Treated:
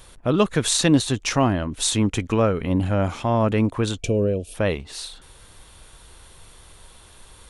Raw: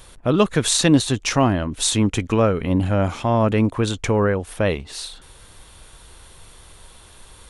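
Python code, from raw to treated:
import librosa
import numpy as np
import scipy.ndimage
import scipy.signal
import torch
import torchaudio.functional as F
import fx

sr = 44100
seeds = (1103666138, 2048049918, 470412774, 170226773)

y = fx.spec_box(x, sr, start_s=4.01, length_s=0.53, low_hz=710.0, high_hz=2300.0, gain_db=-21)
y = y * librosa.db_to_amplitude(-2.0)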